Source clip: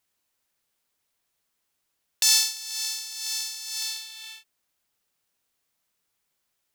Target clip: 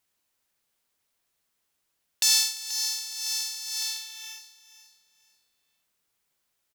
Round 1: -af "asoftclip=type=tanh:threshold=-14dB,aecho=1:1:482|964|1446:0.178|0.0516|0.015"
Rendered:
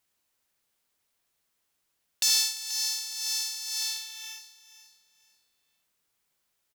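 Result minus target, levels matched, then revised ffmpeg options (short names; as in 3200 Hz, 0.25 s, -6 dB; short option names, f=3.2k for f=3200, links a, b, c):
soft clip: distortion +7 dB
-af "asoftclip=type=tanh:threshold=-8dB,aecho=1:1:482|964|1446:0.178|0.0516|0.015"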